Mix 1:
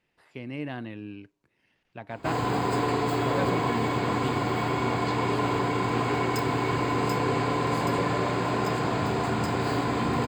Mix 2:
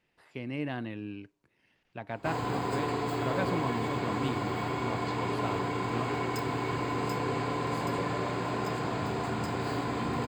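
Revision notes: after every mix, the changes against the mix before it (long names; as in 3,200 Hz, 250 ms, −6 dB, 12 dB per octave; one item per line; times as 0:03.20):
background −5.5 dB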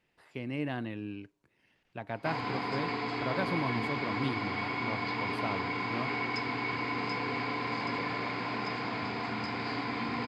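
background: add loudspeaker in its box 130–5,100 Hz, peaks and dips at 160 Hz −9 dB, 240 Hz +3 dB, 370 Hz −7 dB, 580 Hz −7 dB, 2,200 Hz +9 dB, 5,000 Hz +9 dB
reverb: off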